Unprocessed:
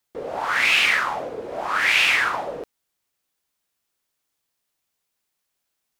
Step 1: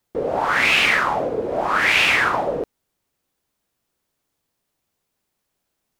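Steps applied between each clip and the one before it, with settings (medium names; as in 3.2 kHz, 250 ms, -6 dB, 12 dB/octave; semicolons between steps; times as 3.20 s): tilt shelf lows +5.5 dB, about 850 Hz; trim +5.5 dB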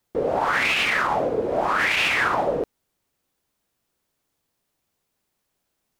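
peak limiter -12.5 dBFS, peak gain reduction 9 dB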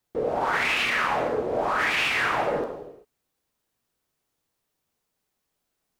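gated-style reverb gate 420 ms falling, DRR 3 dB; trim -4.5 dB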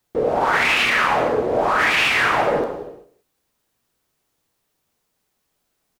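delay 182 ms -18.5 dB; trim +6.5 dB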